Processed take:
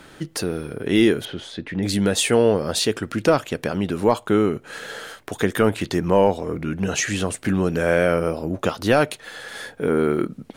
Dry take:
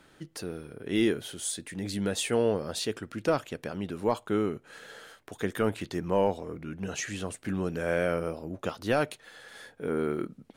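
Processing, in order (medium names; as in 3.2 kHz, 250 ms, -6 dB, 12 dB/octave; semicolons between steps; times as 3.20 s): in parallel at 0 dB: compression, threshold -34 dBFS, peak gain reduction 13 dB; 1.25–1.83 s: on the sum: distance through air 290 m; trim +7 dB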